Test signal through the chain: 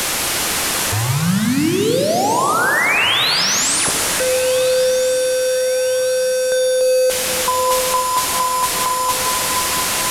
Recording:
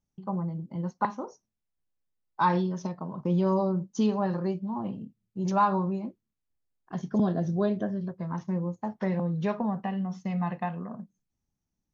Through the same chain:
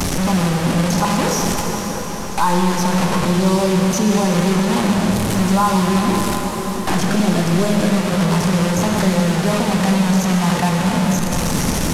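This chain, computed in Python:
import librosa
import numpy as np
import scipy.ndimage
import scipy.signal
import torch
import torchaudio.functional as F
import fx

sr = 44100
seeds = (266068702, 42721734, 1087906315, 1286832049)

p1 = fx.delta_mod(x, sr, bps=64000, step_db=-27.0)
p2 = fx.over_compress(p1, sr, threshold_db=-31.0, ratio=-1.0)
p3 = p1 + F.gain(torch.from_numpy(p2), 1.0).numpy()
p4 = fx.quant_float(p3, sr, bits=8)
p5 = p4 + fx.echo_alternate(p4, sr, ms=706, hz=1700.0, feedback_pct=62, wet_db=-13, dry=0)
p6 = fx.rev_plate(p5, sr, seeds[0], rt60_s=4.2, hf_ratio=0.85, predelay_ms=0, drr_db=1.5)
p7 = fx.band_squash(p6, sr, depth_pct=40)
y = F.gain(torch.from_numpy(p7), 4.0).numpy()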